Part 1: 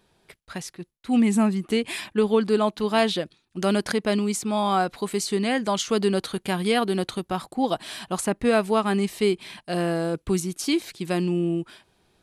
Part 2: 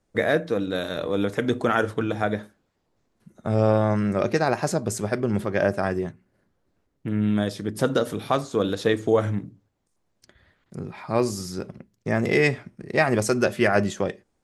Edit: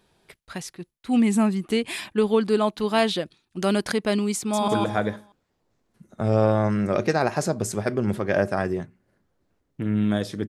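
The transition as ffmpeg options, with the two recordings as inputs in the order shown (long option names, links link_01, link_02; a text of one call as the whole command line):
ffmpeg -i cue0.wav -i cue1.wav -filter_complex "[0:a]apad=whole_dur=10.48,atrim=end=10.48,atrim=end=4.682[link_01];[1:a]atrim=start=1.938:end=7.74[link_02];[link_01][link_02]acrossfade=duration=0.004:curve1=hsin:curve2=hsin,asplit=2[link_03][link_04];[link_04]afade=type=in:start_time=4.37:duration=0.01,afade=type=out:start_time=4.68:duration=0.01,aecho=0:1:160|320|480|640:0.841395|0.252419|0.0757256|0.0227177[link_05];[link_03][link_05]amix=inputs=2:normalize=0" out.wav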